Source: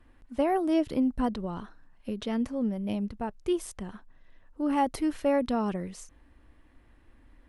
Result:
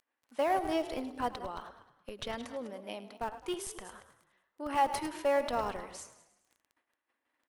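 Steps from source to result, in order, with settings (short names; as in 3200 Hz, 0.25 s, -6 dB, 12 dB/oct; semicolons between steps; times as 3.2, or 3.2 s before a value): reverse delay 0.122 s, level -11.5 dB; expander -45 dBFS; HPF 610 Hz 12 dB/oct; in parallel at -8.5 dB: Schmitt trigger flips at -31.5 dBFS; on the sum: frequency-shifting echo 0.105 s, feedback 55%, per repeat +37 Hz, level -15.5 dB; on a send at -22 dB: reverb RT60 1.1 s, pre-delay 6 ms; on the sum: crackle 11/s -51 dBFS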